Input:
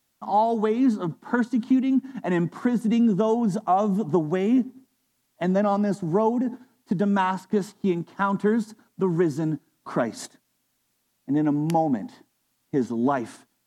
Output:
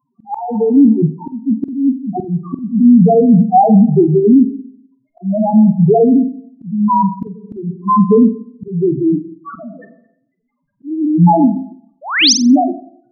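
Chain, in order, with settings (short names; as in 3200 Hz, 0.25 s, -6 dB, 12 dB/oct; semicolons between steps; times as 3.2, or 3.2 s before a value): sample-rate reducer 6600 Hz, jitter 0%; speed mistake 24 fps film run at 25 fps; loudest bins only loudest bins 1; bell 170 Hz +6 dB 0.65 oct; reverb RT60 0.65 s, pre-delay 0.102 s, DRR 18 dB; painted sound rise, 12.01–12.33, 500–6600 Hz -28 dBFS; auto swell 0.462 s; pre-emphasis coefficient 0.8; flutter echo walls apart 7.8 m, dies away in 0.25 s; maximiser +33.5 dB; gain -1 dB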